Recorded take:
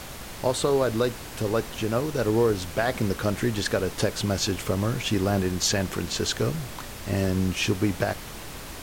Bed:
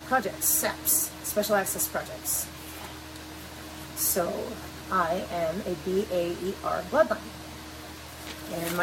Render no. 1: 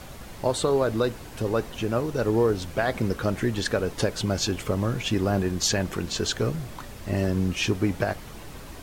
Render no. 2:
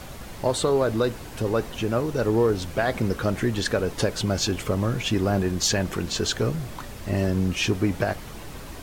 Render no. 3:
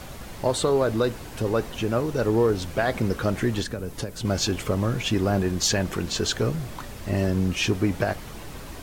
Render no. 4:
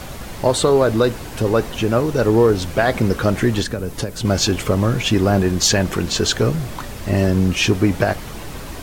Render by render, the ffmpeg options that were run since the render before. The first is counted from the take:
-af "afftdn=nr=7:nf=-39"
-filter_complex "[0:a]asplit=2[a][b];[b]asoftclip=type=tanh:threshold=-27.5dB,volume=-9dB[c];[a][c]amix=inputs=2:normalize=0,acrusher=bits=10:mix=0:aa=0.000001"
-filter_complex "[0:a]asettb=1/sr,asplit=3[a][b][c];[a]atrim=end=3.624[d];[b]atrim=start=3.62:end=4.25,asetpts=PTS-STARTPTS,afade=t=in:d=0.004:c=qsin,afade=t=out:st=0.626:d=0.004:c=qsin,acrossover=split=280|7600[e][f][g];[e]acompressor=threshold=-30dB:ratio=4[h];[f]acompressor=threshold=-35dB:ratio=4[i];[g]acompressor=threshold=-43dB:ratio=4[j];[h][i][j]amix=inputs=3:normalize=0[k];[c]atrim=start=4.246[l];[d][k]acrossfade=d=0.004:c1=hsin:c2=qsin[m];[m][l]acrossfade=d=0.004:c1=qsin:c2=hsin"
-af "volume=7dB"

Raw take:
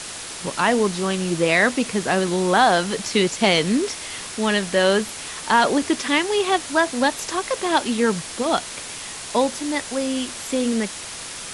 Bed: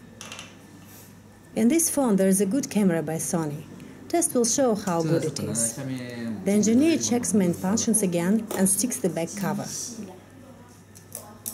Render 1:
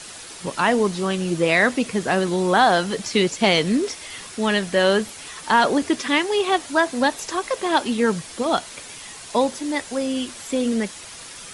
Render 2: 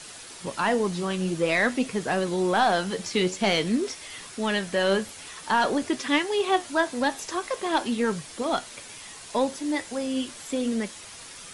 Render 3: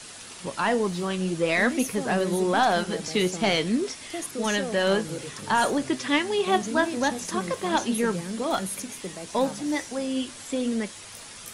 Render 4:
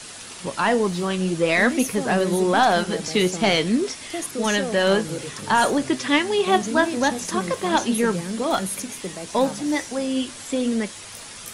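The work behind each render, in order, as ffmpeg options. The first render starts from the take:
-af "afftdn=nr=7:nf=-34"
-af "asoftclip=type=tanh:threshold=-7.5dB,flanger=delay=6.4:depth=5.4:regen=76:speed=0.48:shape=triangular"
-filter_complex "[1:a]volume=-11.5dB[a];[0:a][a]amix=inputs=2:normalize=0"
-af "volume=4dB"

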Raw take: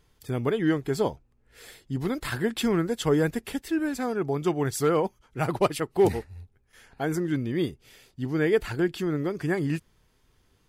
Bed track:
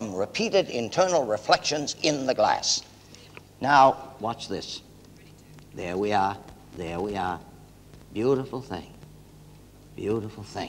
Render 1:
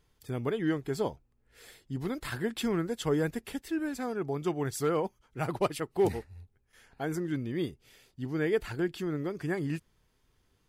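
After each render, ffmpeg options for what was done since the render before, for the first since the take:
-af "volume=-5.5dB"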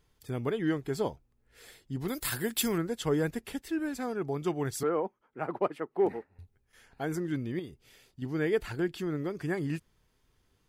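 -filter_complex "[0:a]asettb=1/sr,asplit=3[a][b][c];[a]atrim=end=2.084[d];[b]atrim=start=2.08:end=2.78,asetpts=PTS-STARTPTS,afade=t=in:d=0.004:c=qsin,afade=t=out:st=0.696:d=0.004:c=qsin,aemphasis=mode=production:type=75fm[e];[c]atrim=start=2.776[f];[d][e]acrossfade=d=0.004:c1=hsin:c2=qsin[g];[g][f]acrossfade=d=0.004:c1=qsin:c2=hsin,asettb=1/sr,asplit=3[h][i][j];[h]atrim=end=4.834[k];[i]atrim=start=4.83:end=6.39,asetpts=PTS-STARTPTS,afade=t=in:d=0.004:c=qsin,afade=t=out:st=1.556:d=0.004:c=qsin,acrossover=split=190 2100:gain=0.0631 1 0.0891[l][m][n];[l][m][n]amix=inputs=3:normalize=0[o];[j]atrim=start=6.386[p];[k][o]acrossfade=d=0.004:c1=hsin:c2=qsin[q];[q][p]acrossfade=d=0.004:c1=qsin:c2=hsin,asettb=1/sr,asplit=3[r][s][t];[r]atrim=end=7.594[u];[s]atrim=start=7.59:end=8.22,asetpts=PTS-STARTPTS,afade=t=in:d=0.004:c=qsin,afade=t=out:st=0.626:d=0.004:c=qsin,acompressor=threshold=-41dB:ratio=2.5:attack=3.2:release=140:knee=1:detection=peak[v];[t]atrim=start=8.216[w];[u][v]acrossfade=d=0.004:c1=hsin:c2=qsin[x];[x][w]acrossfade=d=0.004:c1=qsin:c2=hsin"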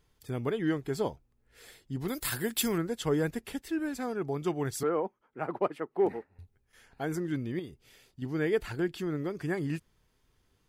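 -af anull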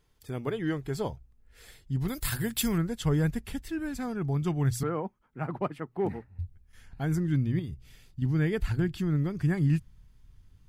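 -af "bandreject=f=60:t=h:w=6,bandreject=f=120:t=h:w=6,asubboost=boost=9:cutoff=140"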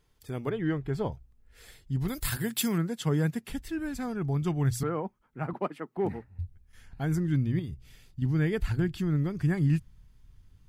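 -filter_complex "[0:a]asettb=1/sr,asplit=3[a][b][c];[a]atrim=end=0.494[d];[b]atrim=start=0.49:end=1.12,asetpts=PTS-STARTPTS,afade=t=in:d=0.004:c=qsin,afade=t=out:st=0.626:d=0.004:c=qsin,bass=f=250:g=3,treble=f=4k:g=-12[e];[c]atrim=start=1.116[f];[d][e]acrossfade=d=0.004:c1=hsin:c2=qsin[g];[g][f]acrossfade=d=0.004:c1=qsin:c2=hsin,asettb=1/sr,asplit=3[h][i][j];[h]atrim=end=2.374[k];[i]atrim=start=2.37:end=3.5,asetpts=PTS-STARTPTS,afade=t=in:d=0.004:c=qsin,afade=t=out:st=1.126:d=0.004:c=qsin,highpass=f=130:w=0.5412,highpass=f=130:w=1.3066[l];[j]atrim=start=3.496[m];[k][l]acrossfade=d=0.004:c1=hsin:c2=qsin[n];[n][m]acrossfade=d=0.004:c1=qsin:c2=hsin,asettb=1/sr,asplit=3[o][p][q];[o]atrim=end=5.534[r];[p]atrim=start=5.53:end=5.97,asetpts=PTS-STARTPTS,afade=t=in:d=0.004:c=qsin,afade=t=out:st=0.436:d=0.004:c=qsin,highpass=f=190:w=0.5412,highpass=f=190:w=1.3066[s];[q]atrim=start=5.966[t];[r][s]acrossfade=d=0.004:c1=hsin:c2=qsin[u];[u][t]acrossfade=d=0.004:c1=qsin:c2=hsin"

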